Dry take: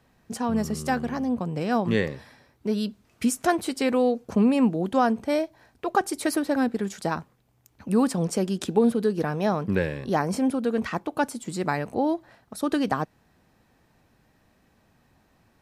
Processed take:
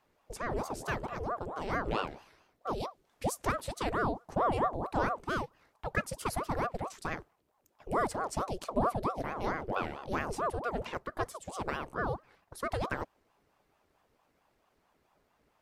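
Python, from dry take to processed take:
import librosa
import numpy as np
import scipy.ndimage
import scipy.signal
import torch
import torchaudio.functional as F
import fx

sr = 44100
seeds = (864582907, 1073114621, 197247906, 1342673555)

y = fx.ring_lfo(x, sr, carrier_hz=570.0, swing_pct=70, hz=4.5)
y = y * 10.0 ** (-6.5 / 20.0)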